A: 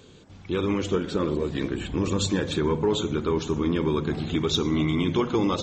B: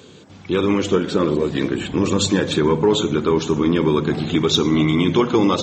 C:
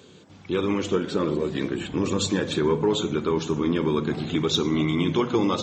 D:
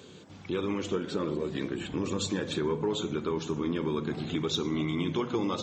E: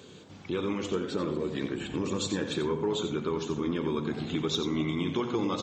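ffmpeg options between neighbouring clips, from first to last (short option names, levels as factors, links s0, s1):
-af "highpass=120,volume=2.37"
-af "flanger=delay=5.1:depth=3.8:regen=87:speed=0.63:shape=sinusoidal,volume=0.841"
-af "acompressor=threshold=0.0112:ratio=1.5"
-af "aecho=1:1:88:0.335"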